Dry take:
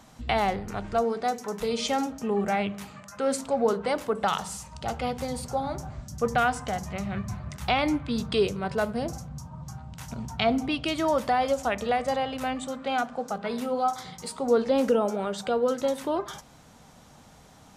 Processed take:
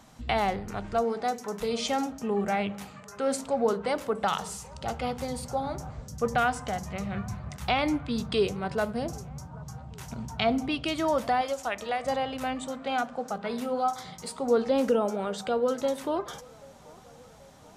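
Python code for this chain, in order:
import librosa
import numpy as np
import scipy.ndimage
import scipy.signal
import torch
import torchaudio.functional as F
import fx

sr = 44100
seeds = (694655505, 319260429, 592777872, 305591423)

y = fx.low_shelf(x, sr, hz=440.0, db=-10.5, at=(11.41, 12.04))
y = fx.echo_wet_bandpass(y, sr, ms=783, feedback_pct=59, hz=810.0, wet_db=-23.0)
y = y * 10.0 ** (-1.5 / 20.0)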